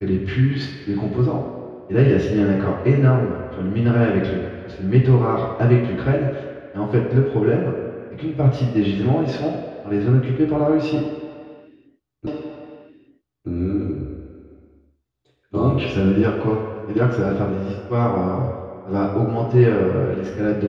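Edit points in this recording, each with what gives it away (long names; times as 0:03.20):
0:12.27: the same again, the last 1.22 s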